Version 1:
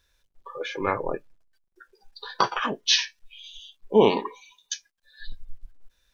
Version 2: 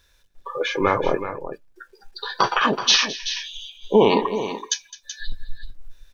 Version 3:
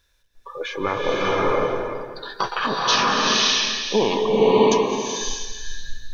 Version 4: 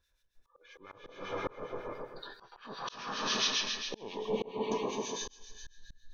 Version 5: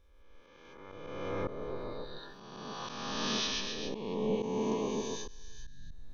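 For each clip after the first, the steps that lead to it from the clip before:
brickwall limiter −13.5 dBFS, peak gain reduction 7.5 dB; on a send: multi-tap delay 211/379 ms −17/−11 dB; on the sum: level +8 dB
slow-attack reverb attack 600 ms, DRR −5.5 dB; level −5 dB
two-band tremolo in antiphase 7.4 Hz, depth 70%, crossover 1,500 Hz; volume swells 479 ms; level −8.5 dB
peak hold with a rise ahead of every peak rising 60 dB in 1.66 s; low-shelf EQ 420 Hz +10.5 dB; level −7.5 dB

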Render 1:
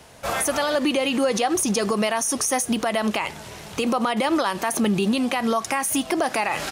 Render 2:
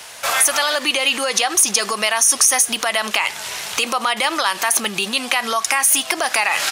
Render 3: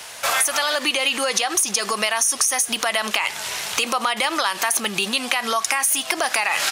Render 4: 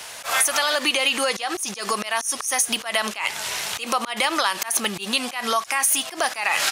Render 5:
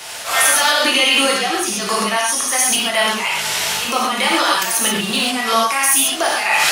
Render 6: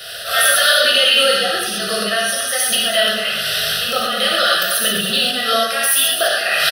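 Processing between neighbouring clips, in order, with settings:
low-shelf EQ 480 Hz −6.5 dB; in parallel at +3 dB: downward compressor, threshold −33 dBFS, peak gain reduction 13 dB; on the sum: tilt shelving filter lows −9 dB, about 630 Hz; level −1 dB
downward compressor, threshold −16 dBFS, peak gain reduction 7 dB
volume swells 125 ms
in parallel at −1 dB: brickwall limiter −13 dBFS, peak gain reduction 8 dB; on the sum: wave folding −5 dBFS; reverb whose tail is shaped and stops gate 160 ms flat, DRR −4.5 dB; level −3.5 dB
Butterworth band-reject 920 Hz, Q 1.7; phaser with its sweep stopped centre 1,500 Hz, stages 8; single-tap delay 205 ms −8.5 dB; level +4 dB

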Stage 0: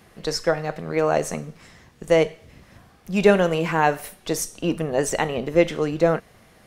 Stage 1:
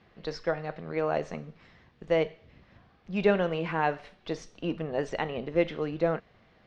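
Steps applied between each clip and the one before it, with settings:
low-pass filter 4,300 Hz 24 dB per octave
level −8 dB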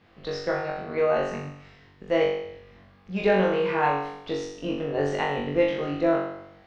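flutter between parallel walls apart 3.6 metres, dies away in 0.77 s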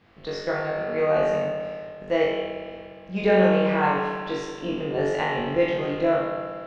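spring reverb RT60 2.2 s, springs 58 ms, chirp 65 ms, DRR 1.5 dB

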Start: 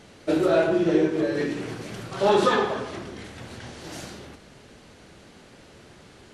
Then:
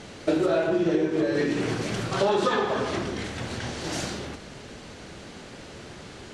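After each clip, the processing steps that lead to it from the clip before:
Chebyshev low-pass filter 7,900 Hz, order 2
downward compressor 5 to 1, threshold −29 dBFS, peak gain reduction 12 dB
level +8 dB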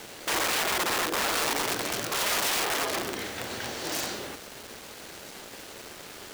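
wrap-around overflow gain 22 dB
bass and treble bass −12 dB, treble +1 dB
bit reduction 7 bits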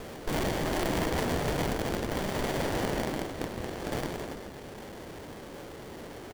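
echo with shifted repeats 163 ms, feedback 48%, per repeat −37 Hz, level −7 dB
windowed peak hold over 33 samples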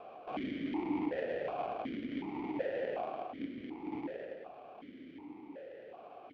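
high-frequency loss of the air 230 metres
convolution reverb RT60 2.3 s, pre-delay 100 ms, DRR 11.5 dB
formant filter that steps through the vowels 2.7 Hz
level +4 dB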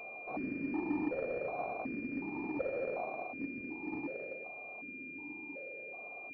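switching amplifier with a slow clock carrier 2,400 Hz

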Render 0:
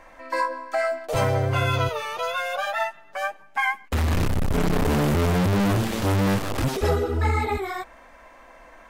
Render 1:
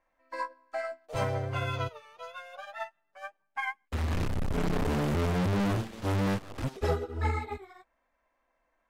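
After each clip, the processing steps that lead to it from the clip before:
high-shelf EQ 11,000 Hz −10.5 dB
expander for the loud parts 2.5 to 1, over −34 dBFS
level −5 dB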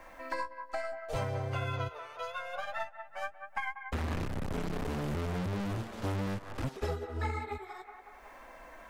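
delay with a band-pass on its return 184 ms, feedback 33%, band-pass 1,100 Hz, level −11 dB
multiband upward and downward compressor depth 100%
level −5.5 dB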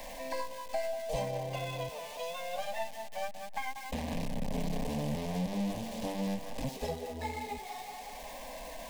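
converter with a step at zero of −40.5 dBFS
phaser with its sweep stopped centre 360 Hz, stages 6
level +2 dB

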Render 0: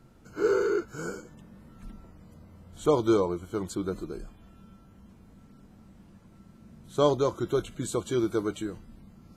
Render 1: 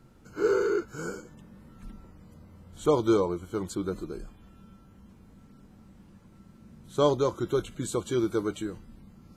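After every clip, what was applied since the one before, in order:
notch filter 670 Hz, Q 12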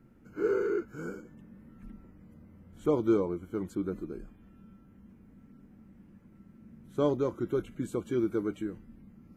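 octave-band graphic EQ 250/1,000/2,000/4,000/8,000 Hz +7/−4/+5/−10/−8 dB
level −5.5 dB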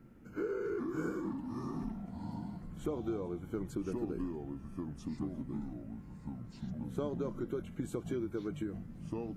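downward compressor 10 to 1, threshold −35 dBFS, peak gain reduction 14.5 dB
delay with pitch and tempo change per echo 328 ms, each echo −4 semitones, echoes 3
level +1.5 dB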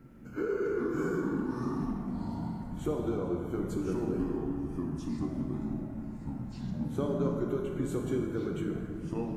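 dense smooth reverb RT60 2.3 s, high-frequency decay 0.5×, DRR 0.5 dB
level +3 dB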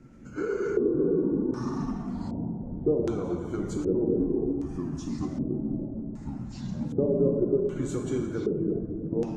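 spectral magnitudes quantised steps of 15 dB
auto-filter low-pass square 0.65 Hz 480–6,700 Hz
level +2.5 dB

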